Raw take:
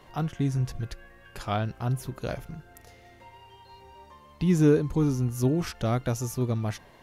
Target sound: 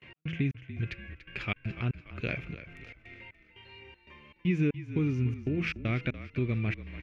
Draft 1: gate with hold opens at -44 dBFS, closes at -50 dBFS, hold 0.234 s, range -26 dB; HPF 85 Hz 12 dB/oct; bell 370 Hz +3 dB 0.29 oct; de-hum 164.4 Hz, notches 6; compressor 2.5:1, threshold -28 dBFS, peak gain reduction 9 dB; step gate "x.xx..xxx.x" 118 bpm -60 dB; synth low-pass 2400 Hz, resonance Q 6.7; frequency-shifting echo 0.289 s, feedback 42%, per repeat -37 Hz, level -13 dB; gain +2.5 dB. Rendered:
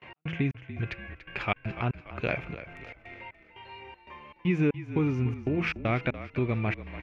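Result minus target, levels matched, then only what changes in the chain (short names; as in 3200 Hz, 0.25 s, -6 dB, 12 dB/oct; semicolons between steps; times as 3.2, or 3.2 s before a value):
1000 Hz band +8.5 dB
add after compressor: bell 840 Hz -14.5 dB 1.4 oct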